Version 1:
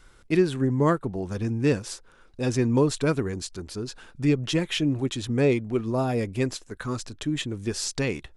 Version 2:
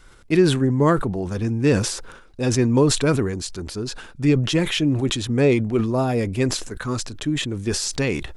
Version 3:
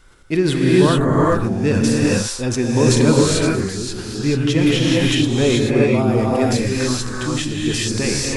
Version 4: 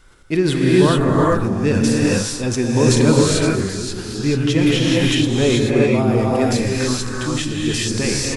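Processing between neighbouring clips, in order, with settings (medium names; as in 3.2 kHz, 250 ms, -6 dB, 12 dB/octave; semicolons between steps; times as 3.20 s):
decay stretcher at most 63 dB/s; trim +4 dB
gated-style reverb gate 460 ms rising, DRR -4.5 dB; trim -1 dB
delay 301 ms -16.5 dB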